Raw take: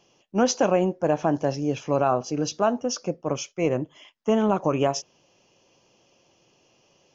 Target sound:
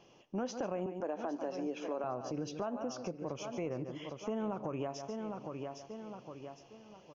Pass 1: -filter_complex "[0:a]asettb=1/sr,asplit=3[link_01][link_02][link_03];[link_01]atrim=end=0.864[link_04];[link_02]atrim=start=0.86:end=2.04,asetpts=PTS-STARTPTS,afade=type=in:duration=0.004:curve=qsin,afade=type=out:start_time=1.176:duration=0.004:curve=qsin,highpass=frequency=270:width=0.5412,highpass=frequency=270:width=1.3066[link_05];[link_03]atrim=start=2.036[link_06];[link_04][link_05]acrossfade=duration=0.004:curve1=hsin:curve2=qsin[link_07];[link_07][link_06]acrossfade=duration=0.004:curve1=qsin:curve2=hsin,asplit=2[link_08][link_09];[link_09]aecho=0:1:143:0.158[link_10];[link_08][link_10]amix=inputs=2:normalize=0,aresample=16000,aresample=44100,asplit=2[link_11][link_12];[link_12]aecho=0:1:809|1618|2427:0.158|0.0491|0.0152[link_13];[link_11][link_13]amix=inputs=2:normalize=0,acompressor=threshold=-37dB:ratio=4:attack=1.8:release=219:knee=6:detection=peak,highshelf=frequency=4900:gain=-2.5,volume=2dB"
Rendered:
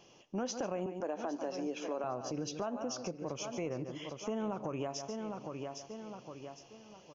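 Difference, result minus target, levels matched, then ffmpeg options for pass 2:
8,000 Hz band +6.5 dB
-filter_complex "[0:a]asettb=1/sr,asplit=3[link_01][link_02][link_03];[link_01]atrim=end=0.864[link_04];[link_02]atrim=start=0.86:end=2.04,asetpts=PTS-STARTPTS,afade=type=in:duration=0.004:curve=qsin,afade=type=out:start_time=1.176:duration=0.004:curve=qsin,highpass=frequency=270:width=0.5412,highpass=frequency=270:width=1.3066[link_05];[link_03]atrim=start=2.036[link_06];[link_04][link_05]acrossfade=duration=0.004:curve1=hsin:curve2=qsin[link_07];[link_07][link_06]acrossfade=duration=0.004:curve1=qsin:curve2=hsin,asplit=2[link_08][link_09];[link_09]aecho=0:1:143:0.158[link_10];[link_08][link_10]amix=inputs=2:normalize=0,aresample=16000,aresample=44100,asplit=2[link_11][link_12];[link_12]aecho=0:1:809|1618|2427:0.158|0.0491|0.0152[link_13];[link_11][link_13]amix=inputs=2:normalize=0,acompressor=threshold=-37dB:ratio=4:attack=1.8:release=219:knee=6:detection=peak,highshelf=frequency=4900:gain=-14,volume=2dB"

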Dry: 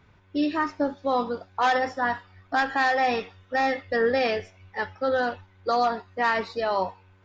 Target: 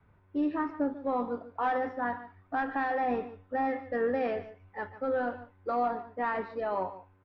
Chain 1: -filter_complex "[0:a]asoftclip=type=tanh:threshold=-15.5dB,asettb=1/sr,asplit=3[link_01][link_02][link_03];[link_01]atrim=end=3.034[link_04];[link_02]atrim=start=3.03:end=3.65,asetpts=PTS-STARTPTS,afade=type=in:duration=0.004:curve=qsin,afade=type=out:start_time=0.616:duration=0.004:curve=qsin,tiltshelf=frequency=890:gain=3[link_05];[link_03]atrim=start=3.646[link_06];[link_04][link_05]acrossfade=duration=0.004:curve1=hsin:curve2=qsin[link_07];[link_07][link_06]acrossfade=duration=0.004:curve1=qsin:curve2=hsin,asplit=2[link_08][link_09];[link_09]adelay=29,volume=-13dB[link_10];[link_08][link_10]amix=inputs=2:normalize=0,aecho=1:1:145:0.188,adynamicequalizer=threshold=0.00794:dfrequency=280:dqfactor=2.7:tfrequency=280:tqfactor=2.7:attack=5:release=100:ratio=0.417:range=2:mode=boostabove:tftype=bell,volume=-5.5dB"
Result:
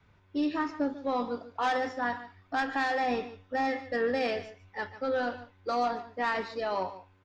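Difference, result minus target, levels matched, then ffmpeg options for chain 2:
2,000 Hz band +3.0 dB
-filter_complex "[0:a]asoftclip=type=tanh:threshold=-15.5dB,asettb=1/sr,asplit=3[link_01][link_02][link_03];[link_01]atrim=end=3.034[link_04];[link_02]atrim=start=3.03:end=3.65,asetpts=PTS-STARTPTS,afade=type=in:duration=0.004:curve=qsin,afade=type=out:start_time=0.616:duration=0.004:curve=qsin,tiltshelf=frequency=890:gain=3[link_05];[link_03]atrim=start=3.646[link_06];[link_04][link_05]acrossfade=duration=0.004:curve1=hsin:curve2=qsin[link_07];[link_07][link_06]acrossfade=duration=0.004:curve1=qsin:curve2=hsin,asplit=2[link_08][link_09];[link_09]adelay=29,volume=-13dB[link_10];[link_08][link_10]amix=inputs=2:normalize=0,aecho=1:1:145:0.188,adynamicequalizer=threshold=0.00794:dfrequency=280:dqfactor=2.7:tfrequency=280:tqfactor=2.7:attack=5:release=100:ratio=0.417:range=2:mode=boostabove:tftype=bell,lowpass=1600,volume=-5.5dB"

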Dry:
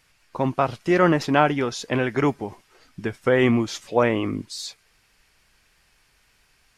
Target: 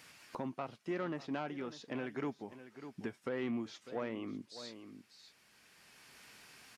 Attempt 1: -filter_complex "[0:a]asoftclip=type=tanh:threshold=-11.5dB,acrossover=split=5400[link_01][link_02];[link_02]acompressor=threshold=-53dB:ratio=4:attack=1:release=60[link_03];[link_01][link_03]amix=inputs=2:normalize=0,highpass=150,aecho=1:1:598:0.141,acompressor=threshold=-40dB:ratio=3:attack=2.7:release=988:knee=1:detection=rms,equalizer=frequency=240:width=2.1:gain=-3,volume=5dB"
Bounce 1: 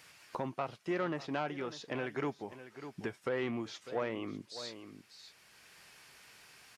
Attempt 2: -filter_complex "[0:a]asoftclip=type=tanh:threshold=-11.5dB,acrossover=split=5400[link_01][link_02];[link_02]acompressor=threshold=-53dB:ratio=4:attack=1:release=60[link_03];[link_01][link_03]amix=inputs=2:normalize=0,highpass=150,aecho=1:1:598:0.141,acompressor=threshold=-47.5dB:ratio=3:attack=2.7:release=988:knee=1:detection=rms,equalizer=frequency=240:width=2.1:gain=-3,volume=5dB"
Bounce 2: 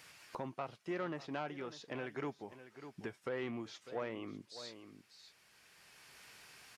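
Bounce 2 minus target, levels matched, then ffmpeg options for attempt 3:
250 Hz band −2.5 dB
-filter_complex "[0:a]asoftclip=type=tanh:threshold=-11.5dB,acrossover=split=5400[link_01][link_02];[link_02]acompressor=threshold=-53dB:ratio=4:attack=1:release=60[link_03];[link_01][link_03]amix=inputs=2:normalize=0,highpass=150,aecho=1:1:598:0.141,acompressor=threshold=-47.5dB:ratio=3:attack=2.7:release=988:knee=1:detection=rms,equalizer=frequency=240:width=2.1:gain=4,volume=5dB"

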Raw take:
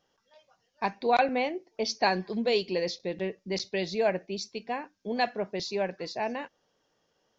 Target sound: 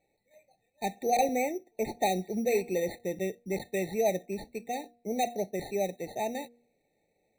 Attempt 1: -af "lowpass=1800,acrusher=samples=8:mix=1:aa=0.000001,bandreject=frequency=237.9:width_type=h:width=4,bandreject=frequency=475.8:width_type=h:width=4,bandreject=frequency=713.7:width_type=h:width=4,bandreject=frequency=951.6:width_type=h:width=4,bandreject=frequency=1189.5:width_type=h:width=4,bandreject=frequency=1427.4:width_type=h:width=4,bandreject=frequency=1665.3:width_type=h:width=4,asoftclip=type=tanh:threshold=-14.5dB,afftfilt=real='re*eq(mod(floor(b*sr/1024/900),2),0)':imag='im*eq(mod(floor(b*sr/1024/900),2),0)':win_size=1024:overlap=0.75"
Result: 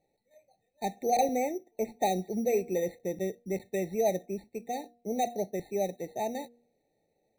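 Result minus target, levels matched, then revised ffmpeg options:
2,000 Hz band −5.0 dB
-af "lowpass=4900,acrusher=samples=8:mix=1:aa=0.000001,bandreject=frequency=237.9:width_type=h:width=4,bandreject=frequency=475.8:width_type=h:width=4,bandreject=frequency=713.7:width_type=h:width=4,bandreject=frequency=951.6:width_type=h:width=4,bandreject=frequency=1189.5:width_type=h:width=4,bandreject=frequency=1427.4:width_type=h:width=4,bandreject=frequency=1665.3:width_type=h:width=4,asoftclip=type=tanh:threshold=-14.5dB,afftfilt=real='re*eq(mod(floor(b*sr/1024/900),2),0)':imag='im*eq(mod(floor(b*sr/1024/900),2),0)':win_size=1024:overlap=0.75"

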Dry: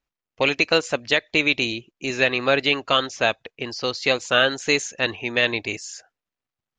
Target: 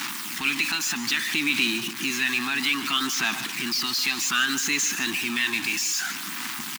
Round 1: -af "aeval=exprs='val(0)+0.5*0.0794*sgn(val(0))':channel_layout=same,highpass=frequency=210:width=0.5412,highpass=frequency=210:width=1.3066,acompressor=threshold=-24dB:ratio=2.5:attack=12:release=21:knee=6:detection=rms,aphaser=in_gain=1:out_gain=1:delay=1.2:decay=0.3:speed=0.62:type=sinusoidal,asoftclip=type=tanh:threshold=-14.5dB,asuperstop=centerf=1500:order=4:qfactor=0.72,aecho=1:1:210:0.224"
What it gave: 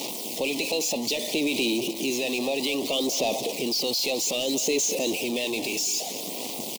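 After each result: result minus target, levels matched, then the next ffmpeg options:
500 Hz band +18.0 dB; soft clipping: distortion +13 dB; echo 59 ms late
-af "aeval=exprs='val(0)+0.5*0.0794*sgn(val(0))':channel_layout=same,highpass=frequency=210:width=0.5412,highpass=frequency=210:width=1.3066,acompressor=threshold=-24dB:ratio=2.5:attack=12:release=21:knee=6:detection=rms,aphaser=in_gain=1:out_gain=1:delay=1.2:decay=0.3:speed=0.62:type=sinusoidal,asoftclip=type=tanh:threshold=-14.5dB,asuperstop=centerf=530:order=4:qfactor=0.72,aecho=1:1:210:0.224"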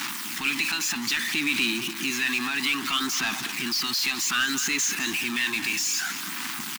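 soft clipping: distortion +13 dB; echo 59 ms late
-af "aeval=exprs='val(0)+0.5*0.0794*sgn(val(0))':channel_layout=same,highpass=frequency=210:width=0.5412,highpass=frequency=210:width=1.3066,acompressor=threshold=-24dB:ratio=2.5:attack=12:release=21:knee=6:detection=rms,aphaser=in_gain=1:out_gain=1:delay=1.2:decay=0.3:speed=0.62:type=sinusoidal,asoftclip=type=tanh:threshold=-6dB,asuperstop=centerf=530:order=4:qfactor=0.72,aecho=1:1:210:0.224"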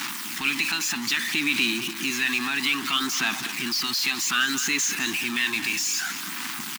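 echo 59 ms late
-af "aeval=exprs='val(0)+0.5*0.0794*sgn(val(0))':channel_layout=same,highpass=frequency=210:width=0.5412,highpass=frequency=210:width=1.3066,acompressor=threshold=-24dB:ratio=2.5:attack=12:release=21:knee=6:detection=rms,aphaser=in_gain=1:out_gain=1:delay=1.2:decay=0.3:speed=0.62:type=sinusoidal,asoftclip=type=tanh:threshold=-6dB,asuperstop=centerf=530:order=4:qfactor=0.72,aecho=1:1:151:0.224"

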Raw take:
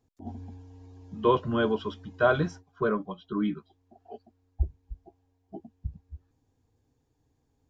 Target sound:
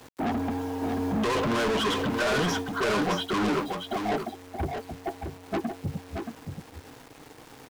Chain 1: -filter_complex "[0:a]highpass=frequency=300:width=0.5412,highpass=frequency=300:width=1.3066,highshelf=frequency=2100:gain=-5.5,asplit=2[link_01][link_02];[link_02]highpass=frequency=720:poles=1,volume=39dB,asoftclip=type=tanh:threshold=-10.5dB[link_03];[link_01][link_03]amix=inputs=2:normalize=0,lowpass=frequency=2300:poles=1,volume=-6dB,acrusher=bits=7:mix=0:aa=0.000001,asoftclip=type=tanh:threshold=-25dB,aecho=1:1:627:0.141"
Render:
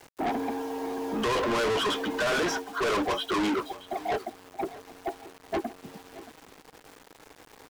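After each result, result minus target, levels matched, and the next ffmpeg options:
125 Hz band −9.5 dB; echo-to-direct −11 dB
-filter_complex "[0:a]highpass=frequency=97:width=0.5412,highpass=frequency=97:width=1.3066,highshelf=frequency=2100:gain=-5.5,asplit=2[link_01][link_02];[link_02]highpass=frequency=720:poles=1,volume=39dB,asoftclip=type=tanh:threshold=-10.5dB[link_03];[link_01][link_03]amix=inputs=2:normalize=0,lowpass=frequency=2300:poles=1,volume=-6dB,acrusher=bits=7:mix=0:aa=0.000001,asoftclip=type=tanh:threshold=-25dB,aecho=1:1:627:0.141"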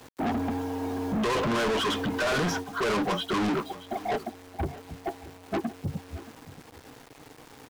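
echo-to-direct −11 dB
-filter_complex "[0:a]highpass=frequency=97:width=0.5412,highpass=frequency=97:width=1.3066,highshelf=frequency=2100:gain=-5.5,asplit=2[link_01][link_02];[link_02]highpass=frequency=720:poles=1,volume=39dB,asoftclip=type=tanh:threshold=-10.5dB[link_03];[link_01][link_03]amix=inputs=2:normalize=0,lowpass=frequency=2300:poles=1,volume=-6dB,acrusher=bits=7:mix=0:aa=0.000001,asoftclip=type=tanh:threshold=-25dB,aecho=1:1:627:0.501"

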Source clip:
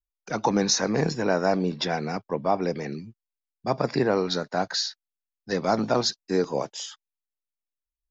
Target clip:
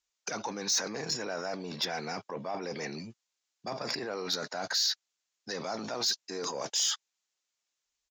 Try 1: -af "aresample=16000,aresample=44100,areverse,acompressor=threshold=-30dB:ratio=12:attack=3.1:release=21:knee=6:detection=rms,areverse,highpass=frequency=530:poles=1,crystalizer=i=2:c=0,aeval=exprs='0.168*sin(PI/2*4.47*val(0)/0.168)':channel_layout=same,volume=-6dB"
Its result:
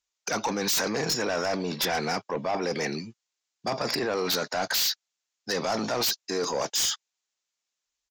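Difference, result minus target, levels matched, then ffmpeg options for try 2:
downward compressor: peak gain reduction −10 dB
-af "aresample=16000,aresample=44100,areverse,acompressor=threshold=-41dB:ratio=12:attack=3.1:release=21:knee=6:detection=rms,areverse,highpass=frequency=530:poles=1,crystalizer=i=2:c=0,aeval=exprs='0.168*sin(PI/2*4.47*val(0)/0.168)':channel_layout=same,volume=-6dB"

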